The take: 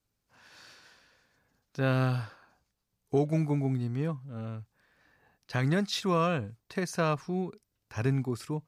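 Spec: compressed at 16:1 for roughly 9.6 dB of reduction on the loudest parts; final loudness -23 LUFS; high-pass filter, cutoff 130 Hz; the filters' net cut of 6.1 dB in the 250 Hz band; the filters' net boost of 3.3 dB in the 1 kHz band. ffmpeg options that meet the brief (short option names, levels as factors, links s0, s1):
-af "highpass=130,equalizer=f=250:t=o:g=-8.5,equalizer=f=1000:t=o:g=4.5,acompressor=threshold=0.0282:ratio=16,volume=5.96"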